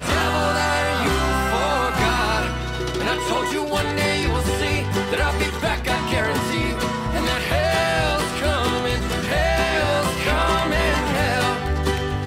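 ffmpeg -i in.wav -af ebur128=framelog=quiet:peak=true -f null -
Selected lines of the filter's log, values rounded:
Integrated loudness:
  I:         -20.9 LUFS
  Threshold: -30.9 LUFS
Loudness range:
  LRA:         1.5 LU
  Threshold: -41.1 LUFS
  LRA low:   -21.8 LUFS
  LRA high:  -20.3 LUFS
True peak:
  Peak:       -8.5 dBFS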